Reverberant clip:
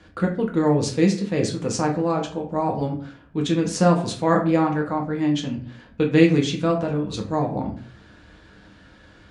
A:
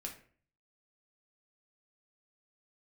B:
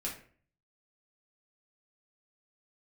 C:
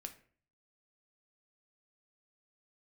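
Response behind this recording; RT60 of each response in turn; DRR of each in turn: A; 0.45, 0.45, 0.45 seconds; 0.0, −4.5, 5.5 decibels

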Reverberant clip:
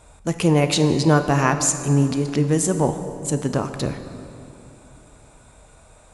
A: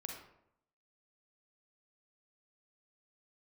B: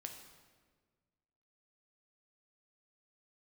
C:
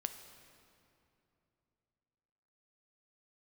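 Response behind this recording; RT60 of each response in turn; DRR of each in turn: C; 0.75, 1.5, 2.9 seconds; 1.0, 3.0, 7.5 decibels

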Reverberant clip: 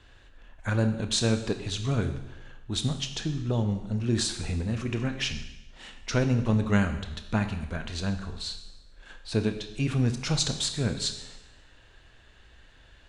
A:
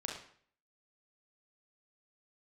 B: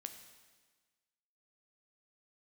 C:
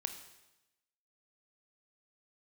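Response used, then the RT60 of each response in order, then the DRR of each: C; 0.55, 1.4, 0.95 seconds; −1.0, 6.5, 7.0 decibels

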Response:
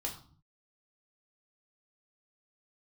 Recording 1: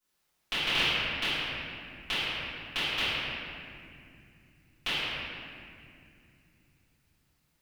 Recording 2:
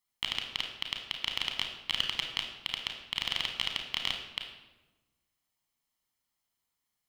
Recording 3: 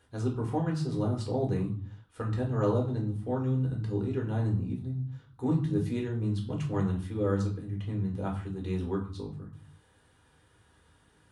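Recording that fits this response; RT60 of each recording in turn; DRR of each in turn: 3; 2.4, 1.1, 0.45 seconds; −20.0, 3.0, −1.0 decibels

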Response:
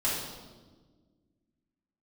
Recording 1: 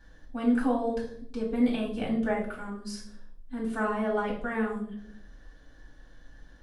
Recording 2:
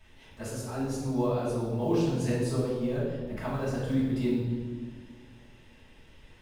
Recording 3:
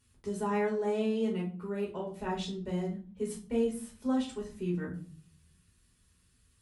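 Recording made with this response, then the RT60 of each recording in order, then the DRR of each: 2; 0.65, 1.4, 0.45 seconds; −5.5, −9.0, −4.0 decibels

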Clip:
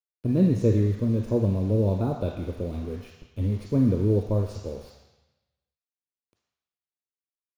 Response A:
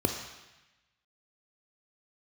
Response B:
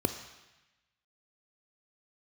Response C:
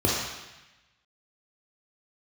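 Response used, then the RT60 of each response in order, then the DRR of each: A; 1.0, 1.0, 1.0 seconds; 4.5, 8.5, −4.5 decibels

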